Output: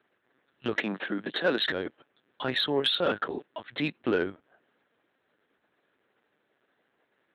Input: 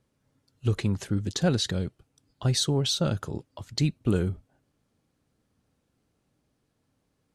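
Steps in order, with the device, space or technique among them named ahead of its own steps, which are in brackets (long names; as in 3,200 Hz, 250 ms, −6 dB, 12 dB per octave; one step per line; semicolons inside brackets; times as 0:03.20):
talking toy (linear-prediction vocoder at 8 kHz pitch kept; high-pass filter 380 Hz 12 dB per octave; parametric band 1,700 Hz +9 dB 0.52 octaves; soft clipping −21 dBFS, distortion −18 dB)
0:00.77–0:01.62: high-pass filter 160 Hz 24 dB per octave
level +6.5 dB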